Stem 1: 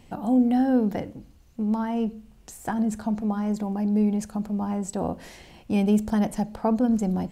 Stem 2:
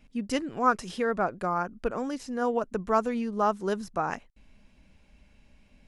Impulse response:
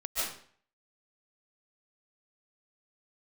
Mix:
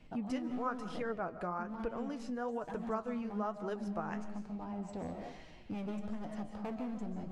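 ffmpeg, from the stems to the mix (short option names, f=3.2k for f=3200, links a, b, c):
-filter_complex "[0:a]lowpass=4.5k,asoftclip=type=hard:threshold=-21.5dB,volume=-8.5dB,asplit=2[a][b];[b]volume=-8dB[c];[1:a]highshelf=f=5.4k:g=-12,volume=2.5dB,asplit=2[d][e];[e]volume=-22.5dB[f];[2:a]atrim=start_sample=2205[g];[c][f]amix=inputs=2:normalize=0[h];[h][g]afir=irnorm=-1:irlink=0[i];[a][d][i]amix=inputs=3:normalize=0,flanger=delay=6.2:depth=6.3:regen=58:speed=1.1:shape=sinusoidal,acompressor=threshold=-39dB:ratio=2.5"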